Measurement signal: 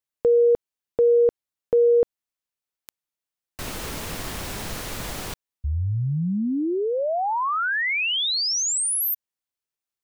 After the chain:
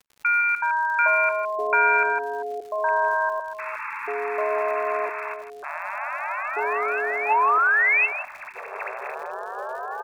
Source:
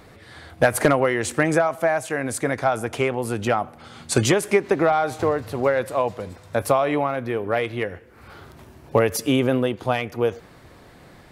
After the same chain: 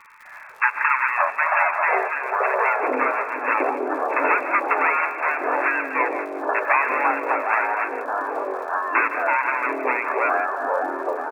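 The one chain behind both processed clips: square wave that keeps the level; FFT band-pass 840–2700 Hz; crackle 91 per s -41 dBFS; delay 160 ms -11.5 dB; ever faster or slower copies 251 ms, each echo -7 st, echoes 3; endings held to a fixed fall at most 520 dB/s; trim +2.5 dB

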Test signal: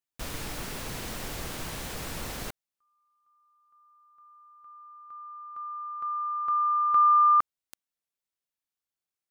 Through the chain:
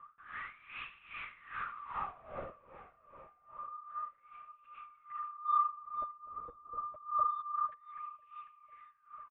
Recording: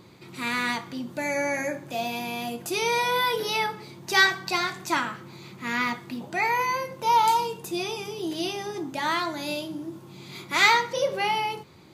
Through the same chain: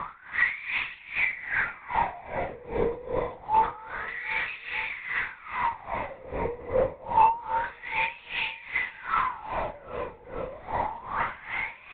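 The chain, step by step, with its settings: spectral levelling over time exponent 0.4; echo from a far wall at 33 m, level -17 dB; wah-wah 0.27 Hz 470–2600 Hz, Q 10; in parallel at -3 dB: saturation -23 dBFS; on the sum: LPC vocoder at 8 kHz whisper; on a send: echo whose repeats swap between lows and highs 249 ms, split 1.7 kHz, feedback 71%, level -9 dB; on the sum: level-controlled noise filter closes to 2.3 kHz, open at -20.5 dBFS; logarithmic tremolo 2.5 Hz, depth 19 dB; trim +2.5 dB

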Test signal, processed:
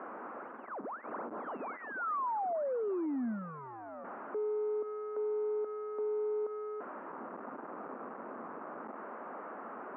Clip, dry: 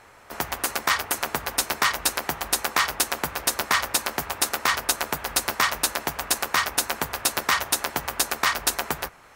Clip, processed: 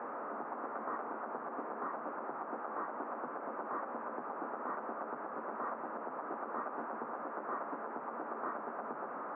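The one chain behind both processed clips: one-bit delta coder 16 kbps, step -28 dBFS; elliptic band-pass 230–1300 Hz, stop band 50 dB; peak limiter -25 dBFS; trim -5 dB

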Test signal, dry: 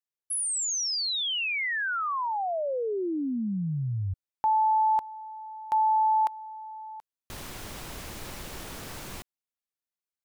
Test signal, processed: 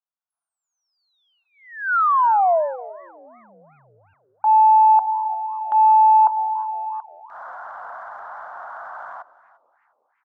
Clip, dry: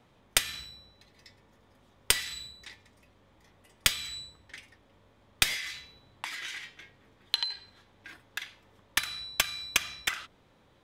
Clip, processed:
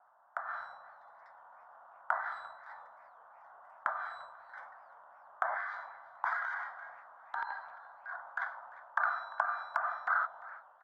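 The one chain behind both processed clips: low-pass that closes with the level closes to 920 Hz, closed at -24.5 dBFS; elliptic band-pass 680–1500 Hz, stop band 40 dB; transient shaper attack -8 dB, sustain +6 dB; level rider gain up to 10.5 dB; on a send: delay 346 ms -20.5 dB; on the sum: modulated delay 360 ms, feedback 49%, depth 200 cents, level -24 dB; trim +3.5 dB

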